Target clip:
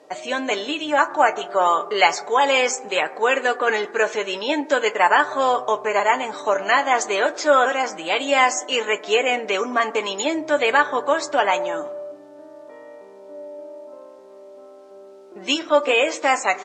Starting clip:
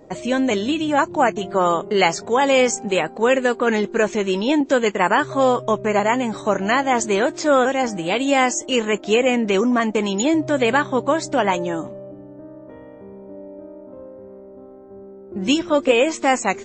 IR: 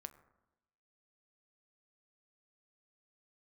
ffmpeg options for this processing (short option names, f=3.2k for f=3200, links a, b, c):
-filter_complex "[0:a]aecho=1:1:6.8:0.45,acrusher=bits=9:mix=0:aa=0.000001,highpass=550,lowpass=6.7k,asplit=2[a][b];[1:a]atrim=start_sample=2205[c];[b][c]afir=irnorm=-1:irlink=0,volume=12.5dB[d];[a][d]amix=inputs=2:normalize=0,volume=-9dB"